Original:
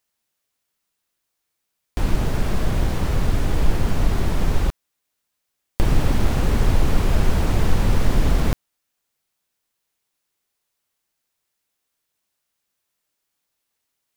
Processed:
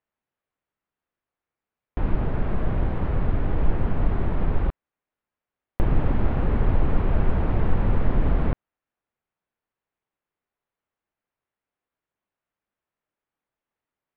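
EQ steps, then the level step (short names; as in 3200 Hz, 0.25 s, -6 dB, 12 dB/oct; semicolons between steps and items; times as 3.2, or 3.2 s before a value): air absorption 480 m; low shelf 370 Hz -3 dB; high shelf 3900 Hz -12 dB; 0.0 dB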